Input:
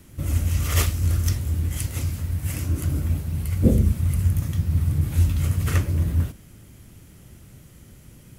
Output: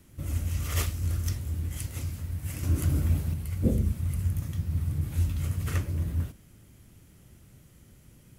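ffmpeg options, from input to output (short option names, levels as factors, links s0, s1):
-filter_complex "[0:a]asettb=1/sr,asplit=3[s0][s1][s2];[s0]atrim=end=2.634[s3];[s1]atrim=start=2.63:end=3.34,asetpts=PTS-STARTPTS,afade=t=in:d=0.004:c=qsin,afade=t=out:st=0.706:d=0.004:c=qsin,acontrast=58[s4];[s2]atrim=start=3.336[s5];[s3][s4]acrossfade=d=0.004:c1=hsin:c2=qsin[s6];[s6][s5]acrossfade=d=0.004:c1=qsin:c2=hsin,volume=0.422"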